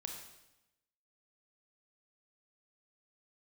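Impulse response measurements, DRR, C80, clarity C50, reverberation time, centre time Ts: 2.5 dB, 6.5 dB, 4.5 dB, 0.95 s, 36 ms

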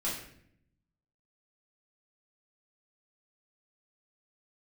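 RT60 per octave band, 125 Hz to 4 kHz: 1.3 s, 1.1 s, 0.75 s, 0.55 s, 0.65 s, 0.50 s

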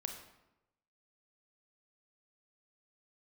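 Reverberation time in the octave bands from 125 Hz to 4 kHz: 1.0 s, 1.0 s, 0.95 s, 0.90 s, 0.80 s, 0.65 s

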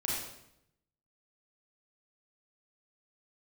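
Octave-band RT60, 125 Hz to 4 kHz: 1.1 s, 0.95 s, 0.85 s, 0.75 s, 0.70 s, 0.65 s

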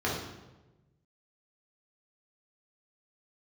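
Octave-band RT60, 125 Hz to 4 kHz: 1.7 s, 1.3 s, 1.2 s, 1.0 s, 0.85 s, 0.80 s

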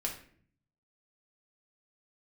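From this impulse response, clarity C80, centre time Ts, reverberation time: 12.0 dB, 20 ms, 0.55 s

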